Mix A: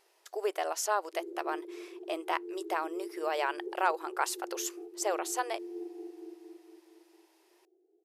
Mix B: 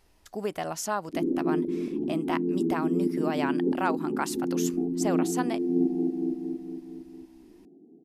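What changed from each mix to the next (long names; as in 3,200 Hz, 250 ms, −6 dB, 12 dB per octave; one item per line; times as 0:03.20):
background +10.5 dB
master: remove linear-phase brick-wall high-pass 330 Hz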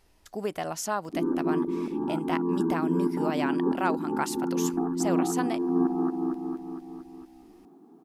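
background: remove Butterworth low-pass 620 Hz 48 dB per octave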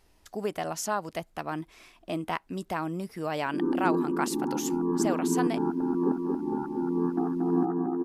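background: entry +2.40 s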